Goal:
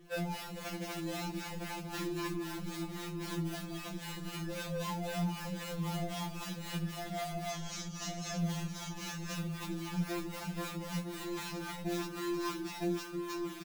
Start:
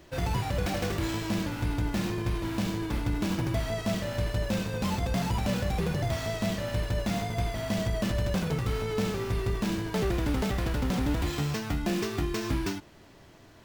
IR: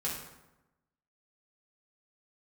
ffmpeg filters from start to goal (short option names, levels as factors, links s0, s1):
-filter_complex "[0:a]equalizer=f=410:w=6.4:g=-5,acrusher=bits=3:mode=log:mix=0:aa=0.000001,asettb=1/sr,asplit=3[s0][s1][s2];[s0]atrim=end=7.504[s3];[s1]atrim=start=7.5:end=8.38,asetpts=PTS-STARTPTS,afade=t=in:d=0.004:c=qsin,afade=t=out:st=0.876:d=0.004:c=qsin,lowpass=f=6200:t=q:w=5.2[s4];[s2]atrim=start=8.376[s5];[s3][s4]acrossfade=d=0.004:c1=hsin:c2=qsin[s6];[s6][s5]acrossfade=d=0.004:c1=qsin:c2=hsin,aecho=1:1:959:0.562,asplit=2[s7][s8];[1:a]atrim=start_sample=2205,adelay=84[s9];[s8][s9]afir=irnorm=-1:irlink=0,volume=0.0668[s10];[s7][s10]amix=inputs=2:normalize=0,acrossover=split=560[s11][s12];[s11]aeval=exprs='val(0)*(1-0.7/2+0.7/2*cos(2*PI*3.8*n/s))':c=same[s13];[s12]aeval=exprs='val(0)*(1-0.7/2-0.7/2*cos(2*PI*3.8*n/s))':c=same[s14];[s13][s14]amix=inputs=2:normalize=0,alimiter=level_in=1.26:limit=0.0631:level=0:latency=1:release=142,volume=0.794,asplit=2[s15][s16];[s16]adelay=24,volume=0.251[s17];[s15][s17]amix=inputs=2:normalize=0,afftfilt=real='re*2.83*eq(mod(b,8),0)':imag='im*2.83*eq(mod(b,8),0)':win_size=2048:overlap=0.75"